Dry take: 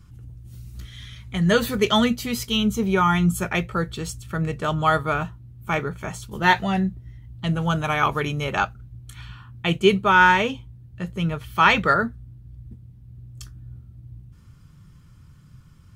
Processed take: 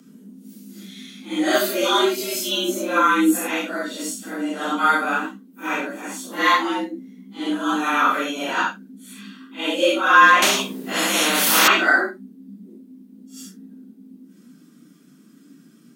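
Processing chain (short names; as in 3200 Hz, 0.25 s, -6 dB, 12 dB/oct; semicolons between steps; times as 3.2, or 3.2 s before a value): phase scrambler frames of 0.2 s; dynamic EQ 1100 Hz, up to +8 dB, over -37 dBFS, Q 4.2; frequency shift +140 Hz; high shelf 4600 Hz +9.5 dB; 10.42–11.68 spectral compressor 4:1; gain -1 dB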